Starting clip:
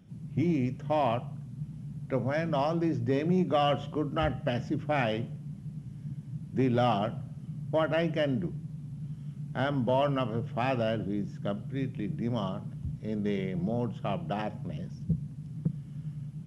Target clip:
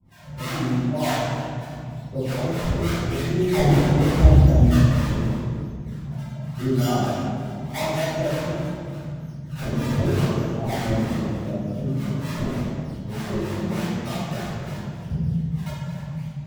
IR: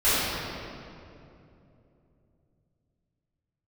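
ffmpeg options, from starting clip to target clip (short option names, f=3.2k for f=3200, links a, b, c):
-filter_complex "[0:a]asettb=1/sr,asplit=3[a][b][c];[a]atrim=end=3.464[d];[b]atrim=start=3.46:end=4.85,asetpts=PTS-STARTPTS,afade=t=in:d=0.004:c=qsin,afade=t=out:st=1.386:d=0.004:c=qsin,aemphasis=mode=reproduction:type=riaa[e];[c]atrim=start=4.846[f];[d][e]acrossfade=d=0.004:c1=hsin:c2=qsin[g];[g][f]acrossfade=d=0.004:c1=qsin:c2=hsin,acrusher=samples=34:mix=1:aa=0.000001:lfo=1:lforange=54.4:lforate=0.84,acrossover=split=710[h][i];[h]aeval=exprs='val(0)*(1-1/2+1/2*cos(2*PI*3.3*n/s))':c=same[j];[i]aeval=exprs='val(0)*(1-1/2-1/2*cos(2*PI*3.3*n/s))':c=same[k];[j][k]amix=inputs=2:normalize=0[l];[1:a]atrim=start_sample=2205,asetrate=61740,aresample=44100[m];[l][m]afir=irnorm=-1:irlink=0,volume=-8dB"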